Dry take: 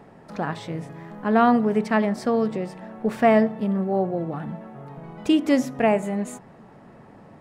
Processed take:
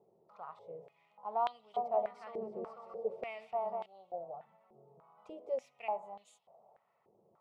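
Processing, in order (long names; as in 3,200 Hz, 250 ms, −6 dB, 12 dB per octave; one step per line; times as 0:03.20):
phaser with its sweep stopped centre 690 Hz, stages 4
0:01.44–0:03.86: bouncing-ball delay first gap 300 ms, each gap 0.65×, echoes 5
band-pass on a step sequencer 3.4 Hz 350–3,300 Hz
level −5.5 dB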